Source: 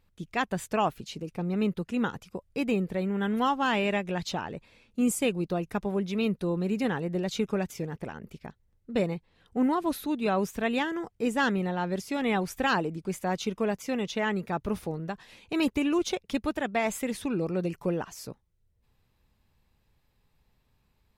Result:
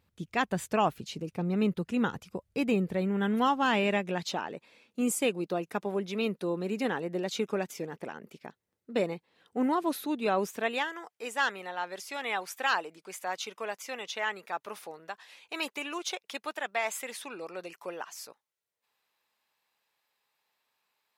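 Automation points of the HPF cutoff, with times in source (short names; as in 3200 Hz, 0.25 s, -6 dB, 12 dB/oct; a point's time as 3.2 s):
3.49 s 66 Hz
4.4 s 270 Hz
10.51 s 270 Hz
10.92 s 760 Hz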